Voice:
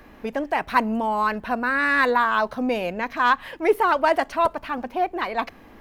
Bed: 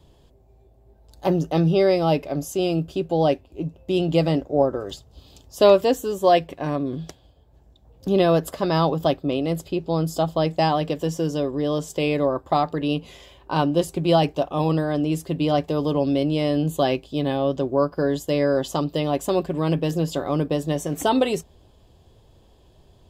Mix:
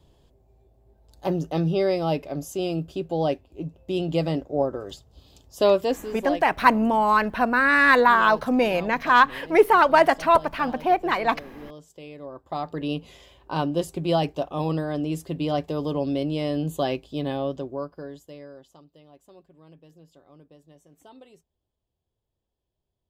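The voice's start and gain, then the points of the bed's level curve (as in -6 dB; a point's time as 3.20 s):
5.90 s, +3.0 dB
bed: 5.91 s -4.5 dB
6.65 s -19.5 dB
12.17 s -19.5 dB
12.79 s -4.5 dB
17.40 s -4.5 dB
18.85 s -29.5 dB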